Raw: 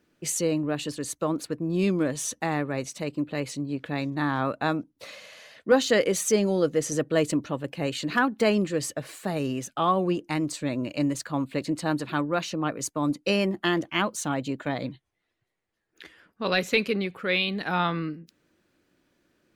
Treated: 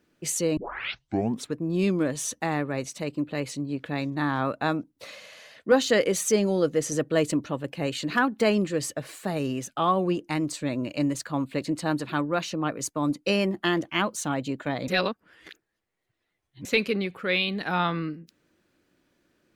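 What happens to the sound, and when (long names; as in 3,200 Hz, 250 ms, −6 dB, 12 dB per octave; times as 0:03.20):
0:00.57: tape start 0.98 s
0:14.88–0:16.65: reverse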